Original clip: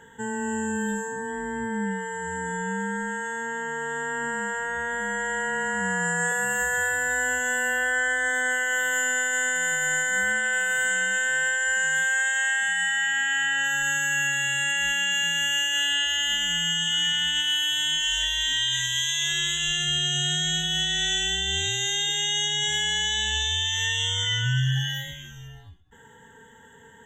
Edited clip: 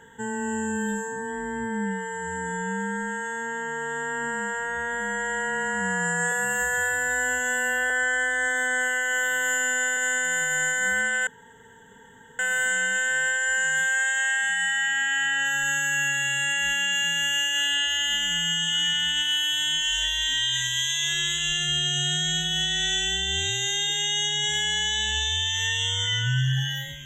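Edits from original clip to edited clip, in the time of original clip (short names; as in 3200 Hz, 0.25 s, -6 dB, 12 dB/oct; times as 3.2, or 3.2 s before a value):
7.9–9.28 stretch 1.5×
10.58 insert room tone 1.12 s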